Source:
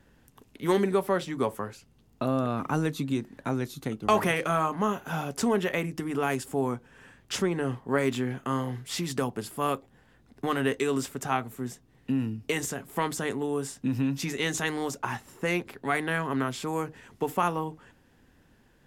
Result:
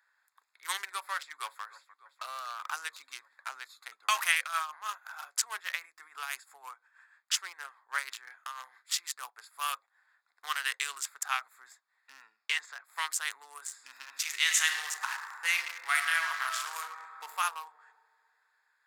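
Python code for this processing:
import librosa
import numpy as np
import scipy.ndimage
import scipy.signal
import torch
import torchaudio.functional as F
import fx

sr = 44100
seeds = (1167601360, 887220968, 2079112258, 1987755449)

y = fx.echo_throw(x, sr, start_s=1.15, length_s=0.48, ms=300, feedback_pct=75, wet_db=-16.5)
y = fx.tremolo(y, sr, hz=6.2, depth=0.6, at=(4.42, 9.59))
y = fx.lowpass(y, sr, hz=fx.line((12.19, 6900.0), (12.83, 3800.0)), slope=12, at=(12.19, 12.83), fade=0.02)
y = fx.reverb_throw(y, sr, start_s=13.63, length_s=3.7, rt60_s=2.3, drr_db=1.5)
y = fx.wiener(y, sr, points=15)
y = scipy.signal.sosfilt(scipy.signal.butter(4, 1200.0, 'highpass', fs=sr, output='sos'), y)
y = fx.high_shelf(y, sr, hz=2800.0, db=10.0)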